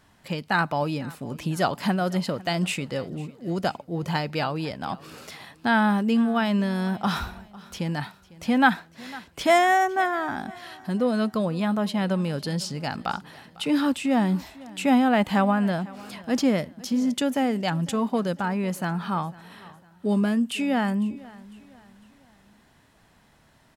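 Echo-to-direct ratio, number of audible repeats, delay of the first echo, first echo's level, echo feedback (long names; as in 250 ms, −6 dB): −20.0 dB, 2, 501 ms, −21.0 dB, 41%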